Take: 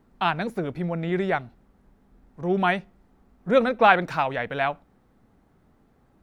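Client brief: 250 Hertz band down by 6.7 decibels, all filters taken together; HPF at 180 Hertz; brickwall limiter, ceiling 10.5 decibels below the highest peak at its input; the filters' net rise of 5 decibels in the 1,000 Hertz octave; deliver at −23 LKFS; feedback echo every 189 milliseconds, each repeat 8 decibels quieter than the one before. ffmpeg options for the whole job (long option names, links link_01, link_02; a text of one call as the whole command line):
ffmpeg -i in.wav -af "highpass=180,equalizer=frequency=250:width_type=o:gain=-8.5,equalizer=frequency=1000:width_type=o:gain=7.5,alimiter=limit=-10.5dB:level=0:latency=1,aecho=1:1:189|378|567|756|945:0.398|0.159|0.0637|0.0255|0.0102,volume=2.5dB" out.wav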